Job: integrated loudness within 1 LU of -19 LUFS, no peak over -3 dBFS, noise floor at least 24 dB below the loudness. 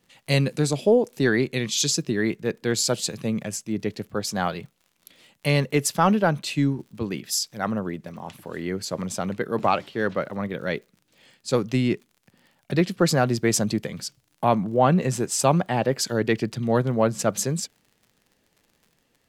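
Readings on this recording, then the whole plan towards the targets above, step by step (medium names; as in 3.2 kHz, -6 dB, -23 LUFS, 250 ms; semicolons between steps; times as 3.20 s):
tick rate 51 per s; loudness -24.0 LUFS; peak level -6.5 dBFS; loudness target -19.0 LUFS
-> de-click; trim +5 dB; peak limiter -3 dBFS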